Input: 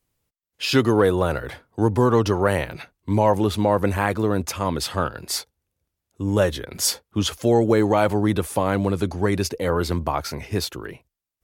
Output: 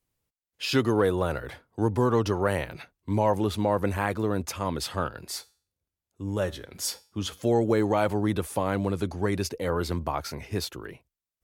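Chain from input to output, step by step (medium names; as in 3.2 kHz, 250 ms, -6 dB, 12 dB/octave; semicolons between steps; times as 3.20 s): 5.30–7.43 s: feedback comb 95 Hz, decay 0.44 s, harmonics all, mix 40%; trim -5.5 dB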